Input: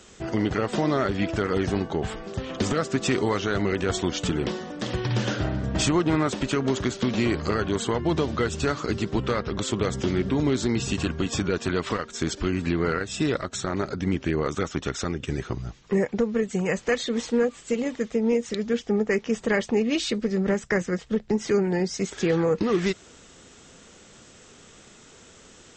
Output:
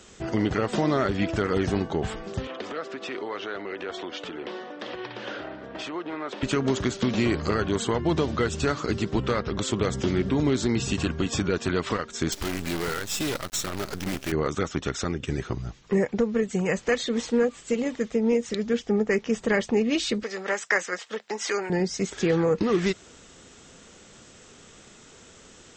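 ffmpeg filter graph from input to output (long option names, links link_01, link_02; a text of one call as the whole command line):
ffmpeg -i in.wav -filter_complex "[0:a]asettb=1/sr,asplit=3[link_01][link_02][link_03];[link_01]atrim=end=2.474[link_04];[link_02]atrim=start=2.47:end=6.43,asetpts=PTS-STARTPTS,afade=type=in:duration=0.004:curve=qsin,afade=type=out:start_time=3.956:duration=0.004:curve=qsin,acompressor=threshold=-27dB:ratio=3:attack=3.2:release=140:knee=1:detection=peak,acrossover=split=300 4300:gain=0.0708 1 0.0631[link_05][link_06][link_07];[link_05][link_06][link_07]amix=inputs=3:normalize=0[link_08];[link_03]atrim=start=6.426[link_09];[link_04][link_08]acrossfade=duration=0.004:curve1=hsin:curve2=qsin[link_10];[link_10][link_09]acrossfade=duration=0.004:curve1=qsin:curve2=hsin,asettb=1/sr,asplit=3[link_11][link_12][link_13];[link_11]atrim=end=12.324[link_14];[link_12]atrim=start=12.32:end=14.32,asetpts=PTS-STARTPTS,afade=type=in:duration=0.004:curve=qsin,afade=type=out:start_time=1.996:duration=0.004:curve=qsin,highshelf=frequency=2700:gain=10.5,acrusher=bits=5:dc=4:mix=0:aa=0.000001,volume=24dB,asoftclip=hard,volume=-24dB[link_15];[link_13]atrim=start=14.316[link_16];[link_14][link_15]acrossfade=duration=0.004:curve1=hsin:curve2=qsin[link_17];[link_17][link_16]acrossfade=duration=0.004:curve1=qsin:curve2=hsin,asettb=1/sr,asplit=3[link_18][link_19][link_20];[link_18]atrim=end=20.234[link_21];[link_19]atrim=start=20.23:end=21.7,asetpts=PTS-STARTPTS,afade=type=in:duration=0.004:curve=qsin,afade=type=out:start_time=1.466:duration=0.004:curve=qsin,highpass=810,acontrast=47[link_22];[link_20]atrim=start=21.696[link_23];[link_21][link_22]acrossfade=duration=0.004:curve1=hsin:curve2=qsin[link_24];[link_24][link_23]acrossfade=duration=0.004:curve1=qsin:curve2=hsin" out.wav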